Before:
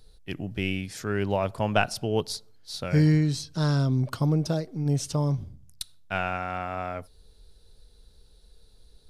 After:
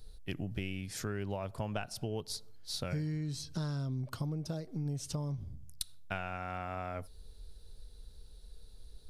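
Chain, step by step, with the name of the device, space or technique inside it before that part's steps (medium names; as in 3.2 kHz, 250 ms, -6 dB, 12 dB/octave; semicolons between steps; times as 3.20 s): ASMR close-microphone chain (bass shelf 110 Hz +7 dB; compression 10:1, threshold -31 dBFS, peak gain reduction 16 dB; treble shelf 8.8 kHz +5 dB); trim -2.5 dB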